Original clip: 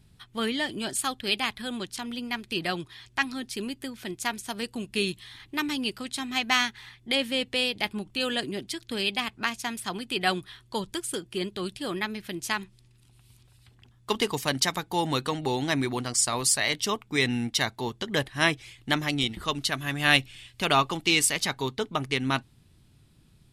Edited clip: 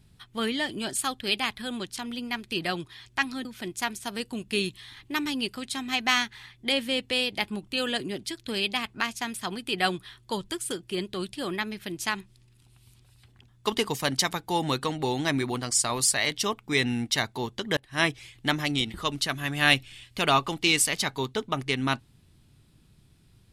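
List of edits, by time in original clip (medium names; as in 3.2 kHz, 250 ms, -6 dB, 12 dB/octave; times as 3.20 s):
3.45–3.88 s: delete
18.20–18.49 s: fade in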